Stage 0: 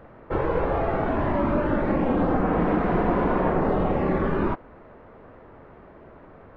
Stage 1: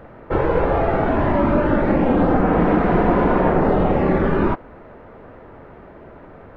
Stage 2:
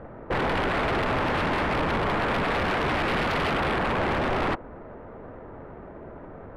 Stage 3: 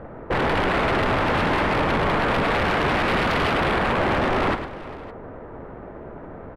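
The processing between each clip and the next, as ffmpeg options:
-af "bandreject=f=1.1k:w=18,volume=6dB"
-af "aeval=exprs='0.1*(abs(mod(val(0)/0.1+3,4)-2)-1)':c=same,adynamicsmooth=sensitivity=2.5:basefreq=2.1k"
-af "aecho=1:1:107|403|563:0.335|0.126|0.1,volume=3.5dB"

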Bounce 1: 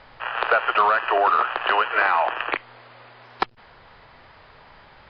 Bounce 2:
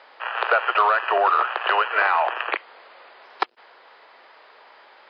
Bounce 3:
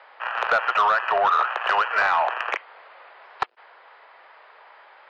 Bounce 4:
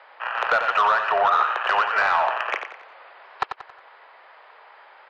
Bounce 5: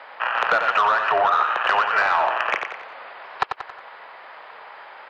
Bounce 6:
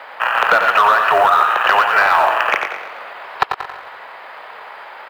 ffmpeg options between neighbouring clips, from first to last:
-af "highpass=f=360:w=0.5412,highpass=f=360:w=1.3066"
-filter_complex "[0:a]acrossover=split=480 3000:gain=0.2 1 0.2[a][b][c];[a][b][c]amix=inputs=3:normalize=0,asoftclip=type=tanh:threshold=-13dB,volume=1.5dB"
-af "aecho=1:1:91|182|273|364:0.398|0.155|0.0606|0.0236"
-af "acompressor=threshold=-29dB:ratio=2,tremolo=f=290:d=0.333,volume=9dB"
-filter_complex "[0:a]asplit=2[a][b];[b]acrusher=bits=5:mode=log:mix=0:aa=0.000001,volume=-5.5dB[c];[a][c]amix=inputs=2:normalize=0,aecho=1:1:112|224|336|448|560:0.237|0.121|0.0617|0.0315|0.016,volume=2.5dB"

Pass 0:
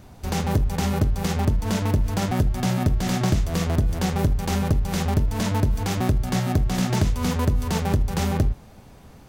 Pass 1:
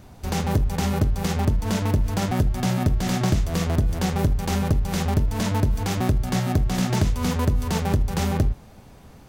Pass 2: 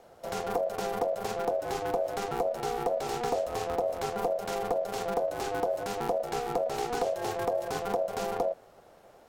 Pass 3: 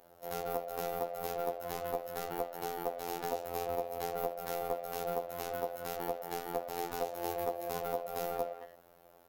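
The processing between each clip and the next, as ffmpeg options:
-af anull
-af "aeval=exprs='val(0)*sin(2*PI*600*n/s)':c=same,volume=-6.5dB"
-filter_complex "[0:a]asplit=2[a][b];[b]adelay=220,highpass=300,lowpass=3.4k,asoftclip=type=hard:threshold=-27.5dB,volume=-10dB[c];[a][c]amix=inputs=2:normalize=0,aexciter=amount=4.3:drive=7.1:freq=11k,afftfilt=real='hypot(re,im)*cos(PI*b)':imag='0':win_size=2048:overlap=0.75,volume=-3dB"

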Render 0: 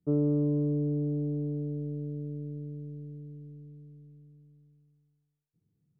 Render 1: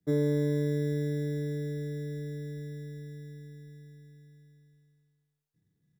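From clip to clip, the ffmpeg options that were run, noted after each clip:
-filter_complex "[0:a]asplit=2[a][b];[b]adelay=32,volume=-6dB[c];[a][c]amix=inputs=2:normalize=0,acrossover=split=180|450[d][e][f];[d]acrusher=samples=24:mix=1:aa=0.000001[g];[g][e][f]amix=inputs=3:normalize=0"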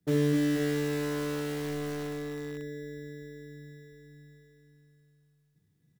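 -filter_complex "[0:a]asplit=2[a][b];[b]aeval=exprs='(mod(35.5*val(0)+1,2)-1)/35.5':c=same,volume=-8dB[c];[a][c]amix=inputs=2:normalize=0,aecho=1:1:62|71|72|256|486:0.422|0.141|0.106|0.596|0.501"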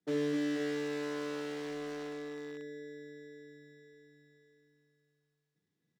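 -filter_complex "[0:a]acrossover=split=220 7300:gain=0.1 1 0.141[a][b][c];[a][b][c]amix=inputs=3:normalize=0,volume=-4dB"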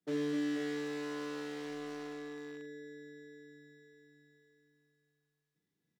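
-af "aecho=1:1:35|45:0.266|0.299,volume=-2.5dB"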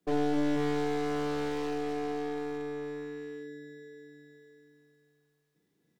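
-filter_complex "[0:a]equalizer=f=450:t=o:w=2.1:g=7,asplit=2[a][b];[b]alimiter=level_in=4.5dB:limit=-24dB:level=0:latency=1,volume=-4.5dB,volume=1dB[c];[a][c]amix=inputs=2:normalize=0,aeval=exprs='clip(val(0),-1,0.0141)':c=same"

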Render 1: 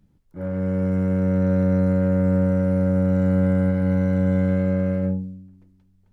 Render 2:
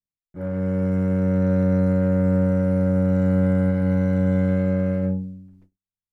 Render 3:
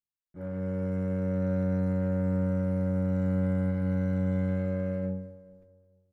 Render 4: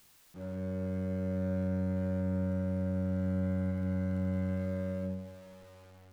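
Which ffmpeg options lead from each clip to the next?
-af "agate=range=-43dB:threshold=-51dB:ratio=16:detection=peak"
-filter_complex "[0:a]asplit=2[a][b];[b]adelay=216,lowpass=f=1.5k:p=1,volume=-14dB,asplit=2[c][d];[d]adelay=216,lowpass=f=1.5k:p=1,volume=0.52,asplit=2[e][f];[f]adelay=216,lowpass=f=1.5k:p=1,volume=0.52,asplit=2[g][h];[h]adelay=216,lowpass=f=1.5k:p=1,volume=0.52,asplit=2[i][j];[j]adelay=216,lowpass=f=1.5k:p=1,volume=0.52[k];[a][c][e][g][i][k]amix=inputs=6:normalize=0,volume=-8.5dB"
-af "aeval=exprs='val(0)+0.5*0.00501*sgn(val(0))':c=same,volume=-5dB"

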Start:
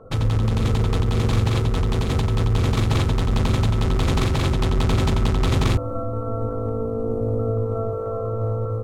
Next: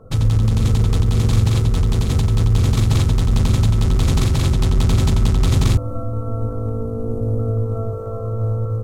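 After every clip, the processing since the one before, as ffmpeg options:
-af "bass=f=250:g=8,treble=f=4k:g=10,volume=-3dB"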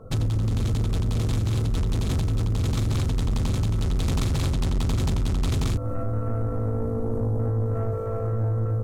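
-af "acompressor=threshold=-16dB:ratio=4,asoftclip=type=tanh:threshold=-19.5dB"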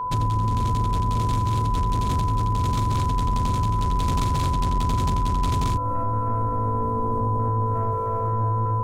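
-af "aeval=exprs='val(0)+0.0562*sin(2*PI*1000*n/s)':c=same"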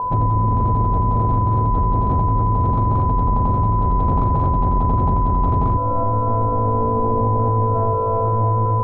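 -af "lowpass=f=770:t=q:w=1.9,acontrast=26"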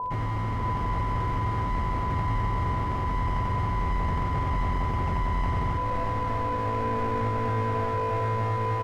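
-af "asoftclip=type=hard:threshold=-17.5dB,aecho=1:1:632:0.501,volume=-8.5dB"

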